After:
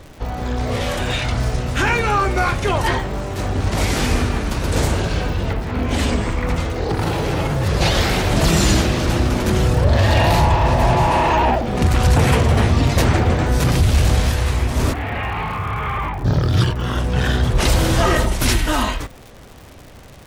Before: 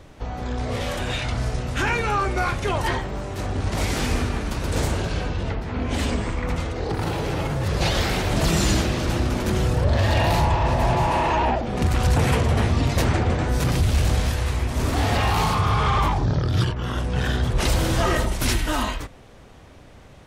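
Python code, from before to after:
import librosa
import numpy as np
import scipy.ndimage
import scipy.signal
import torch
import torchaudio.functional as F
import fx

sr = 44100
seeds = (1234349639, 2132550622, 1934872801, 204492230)

y = fx.ladder_lowpass(x, sr, hz=2700.0, resonance_pct=45, at=(14.92, 16.24), fade=0.02)
y = fx.dmg_crackle(y, sr, seeds[0], per_s=180.0, level_db=-36.0)
y = y * librosa.db_to_amplitude(5.0)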